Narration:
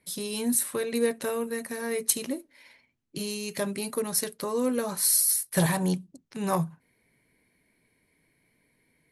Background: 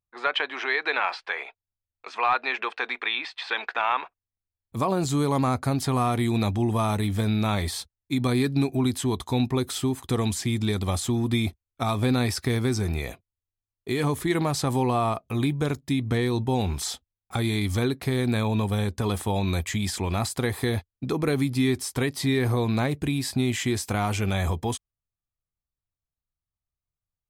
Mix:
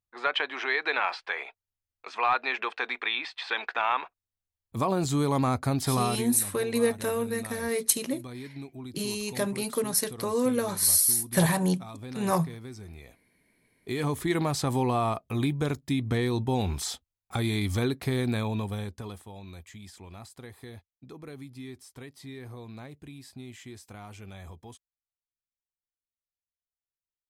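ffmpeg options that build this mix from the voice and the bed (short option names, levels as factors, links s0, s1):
-filter_complex "[0:a]adelay=5800,volume=1.12[s0];[1:a]volume=4.47,afade=t=out:st=5.97:d=0.36:silence=0.16788,afade=t=in:st=13.12:d=1.16:silence=0.177828,afade=t=out:st=18.14:d=1.11:silence=0.149624[s1];[s0][s1]amix=inputs=2:normalize=0"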